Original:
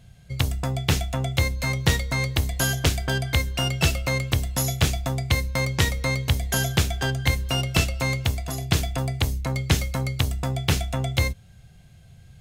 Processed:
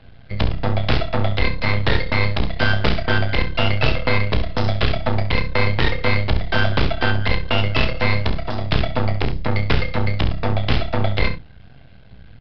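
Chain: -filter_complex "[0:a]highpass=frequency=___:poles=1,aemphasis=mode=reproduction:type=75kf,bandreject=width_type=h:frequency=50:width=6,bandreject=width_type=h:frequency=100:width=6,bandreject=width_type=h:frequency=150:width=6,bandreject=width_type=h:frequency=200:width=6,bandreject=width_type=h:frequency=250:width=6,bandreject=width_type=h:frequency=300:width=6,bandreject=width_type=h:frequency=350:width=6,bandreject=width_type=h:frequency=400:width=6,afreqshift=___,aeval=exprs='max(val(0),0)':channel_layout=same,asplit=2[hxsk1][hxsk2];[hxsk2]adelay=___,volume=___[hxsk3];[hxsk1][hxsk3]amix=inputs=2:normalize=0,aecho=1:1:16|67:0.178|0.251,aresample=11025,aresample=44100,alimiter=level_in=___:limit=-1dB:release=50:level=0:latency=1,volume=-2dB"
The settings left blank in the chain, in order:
140, -29, 31, -11.5dB, 15dB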